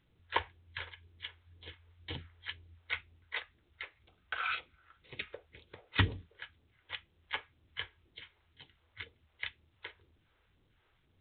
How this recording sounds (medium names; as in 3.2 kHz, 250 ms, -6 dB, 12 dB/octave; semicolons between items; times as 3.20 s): a quantiser's noise floor 12-bit, dither none; phasing stages 2, 2 Hz, lowest notch 170–1500 Hz; µ-law